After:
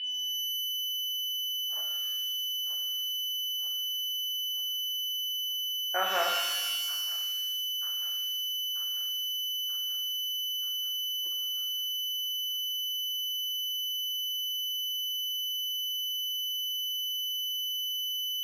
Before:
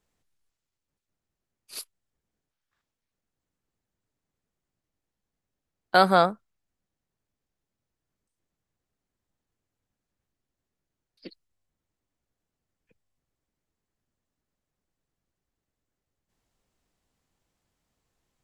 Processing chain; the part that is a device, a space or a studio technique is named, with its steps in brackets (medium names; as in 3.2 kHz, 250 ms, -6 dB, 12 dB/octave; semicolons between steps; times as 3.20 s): feedback echo behind a high-pass 935 ms, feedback 63%, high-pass 2.8 kHz, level -8 dB; toy sound module (decimation joined by straight lines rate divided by 8×; class-D stage that switches slowly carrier 3 kHz; cabinet simulation 700–4300 Hz, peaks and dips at 970 Hz -5 dB, 1.7 kHz +7 dB, 2.4 kHz +4 dB, 3.5 kHz -4 dB); pitch-shifted reverb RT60 1.2 s, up +12 st, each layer -2 dB, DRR 1.5 dB; trim -7.5 dB